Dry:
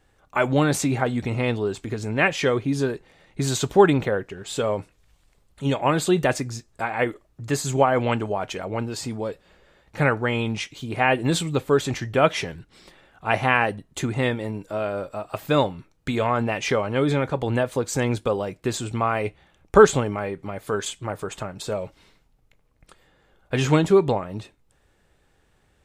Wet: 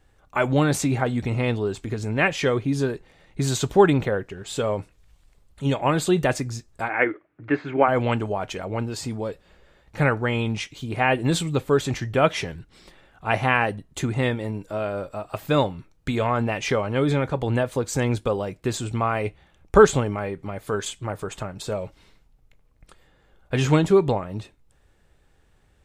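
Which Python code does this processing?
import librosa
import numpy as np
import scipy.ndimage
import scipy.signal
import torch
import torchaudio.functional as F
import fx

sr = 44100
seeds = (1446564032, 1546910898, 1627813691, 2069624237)

y = fx.cabinet(x, sr, low_hz=120.0, low_slope=24, high_hz=2600.0, hz=(130.0, 210.0, 310.0, 1500.0, 2200.0), db=(-10, -10, 9, 9, 8), at=(6.88, 7.87), fade=0.02)
y = fx.low_shelf(y, sr, hz=97.0, db=7.0)
y = y * 10.0 ** (-1.0 / 20.0)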